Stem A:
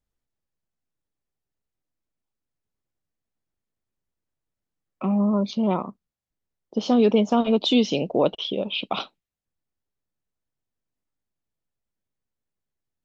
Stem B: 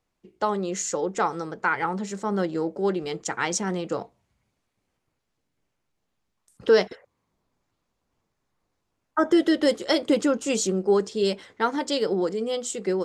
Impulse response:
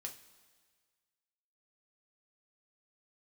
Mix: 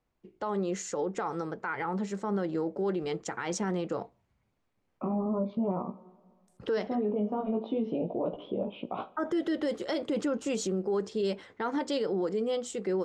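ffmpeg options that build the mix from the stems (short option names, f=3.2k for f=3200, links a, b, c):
-filter_complex "[0:a]lowpass=1.1k,flanger=delay=16.5:depth=3:speed=0.35,volume=-0.5dB,asplit=2[a][b];[b]volume=-4dB[c];[1:a]highshelf=f=6.1k:g=-4.5,volume=-1.5dB,asplit=2[d][e];[e]apad=whole_len=575429[f];[a][f]sidechaincompress=threshold=-38dB:ratio=8:attack=16:release=983[g];[2:a]atrim=start_sample=2205[h];[c][h]afir=irnorm=-1:irlink=0[i];[g][d][i]amix=inputs=3:normalize=0,highshelf=f=3.4k:g=-7.5,alimiter=limit=-22.5dB:level=0:latency=1:release=52"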